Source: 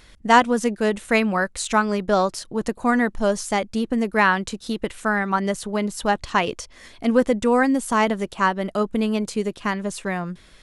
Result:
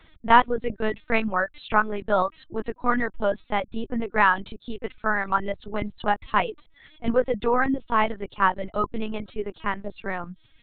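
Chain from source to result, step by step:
reverb reduction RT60 0.82 s
dynamic equaliser 1,200 Hz, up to +4 dB, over −33 dBFS, Q 1.1
linear-prediction vocoder at 8 kHz pitch kept
level −3.5 dB

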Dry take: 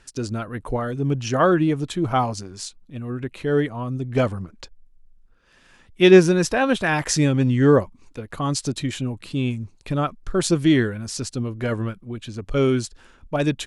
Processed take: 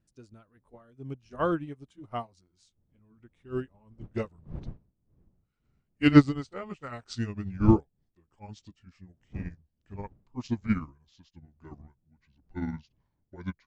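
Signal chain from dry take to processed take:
pitch glide at a constant tempo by −8.5 semitones starting unshifted
wind on the microphone 140 Hz −33 dBFS
expander for the loud parts 2.5 to 1, over −30 dBFS

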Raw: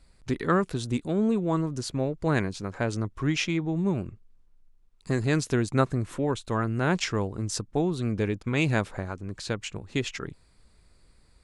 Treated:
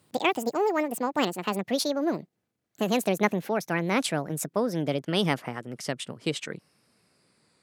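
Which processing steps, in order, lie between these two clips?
gliding playback speed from 200% → 100%
high-pass filter 140 Hz 24 dB per octave

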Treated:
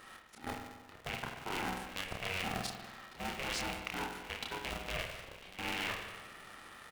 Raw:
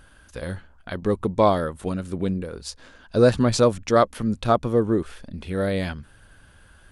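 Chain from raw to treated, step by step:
loose part that buzzes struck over −30 dBFS, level −11 dBFS
high-pass filter 610 Hz 6 dB per octave
high-shelf EQ 5,700 Hz −8.5 dB
downward compressor 12 to 1, threshold −32 dBFS, peak gain reduction 18 dB
volume swells 346 ms
output level in coarse steps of 16 dB
double-tracking delay 30 ms −3 dB
spring reverb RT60 1.3 s, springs 47 ms, chirp 30 ms, DRR 3 dB
ring modulator with a square carrier 280 Hz
level +8 dB

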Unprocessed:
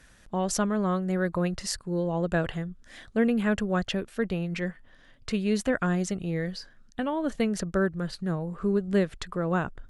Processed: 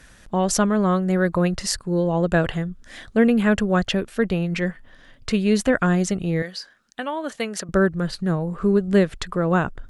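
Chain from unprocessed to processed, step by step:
0:06.42–0:07.69: high-pass filter 850 Hz 6 dB per octave
level +7 dB

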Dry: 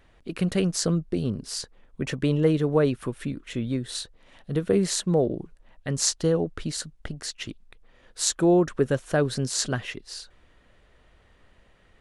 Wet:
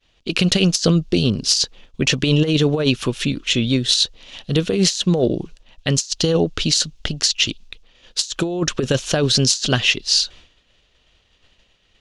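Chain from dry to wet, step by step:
flat-topped bell 4,200 Hz +14 dB
downward expander −45 dBFS
compressor whose output falls as the input rises −22 dBFS, ratio −0.5
level +6 dB

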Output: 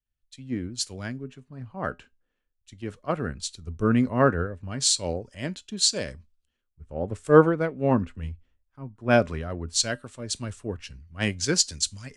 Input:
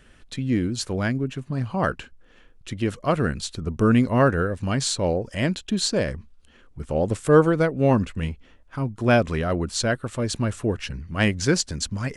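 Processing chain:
low-pass filter 8,800 Hz 12 dB per octave
high-shelf EQ 5,400 Hz +7.5 dB
tuned comb filter 84 Hz, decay 0.22 s, harmonics odd, mix 40%
multiband upward and downward expander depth 100%
level −4 dB

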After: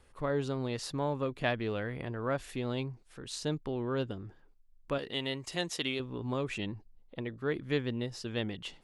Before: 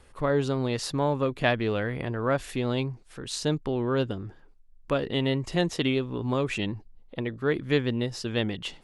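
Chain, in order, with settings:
0:04.98–0:06.00: spectral tilt +2.5 dB per octave
level −7 dB

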